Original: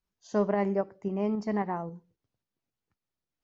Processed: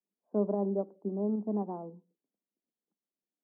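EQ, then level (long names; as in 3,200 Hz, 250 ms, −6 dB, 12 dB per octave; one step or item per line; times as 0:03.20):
Gaussian smoothing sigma 11 samples
Butterworth high-pass 190 Hz 48 dB per octave
high-frequency loss of the air 250 metres
0.0 dB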